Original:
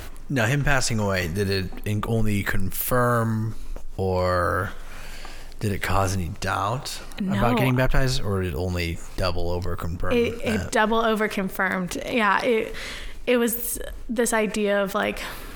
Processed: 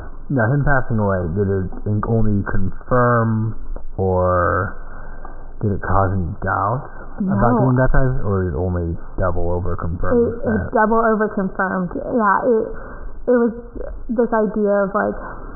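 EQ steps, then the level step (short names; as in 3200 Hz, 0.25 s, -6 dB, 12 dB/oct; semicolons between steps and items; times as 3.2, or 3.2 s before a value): brick-wall FIR low-pass 1600 Hz; +6.0 dB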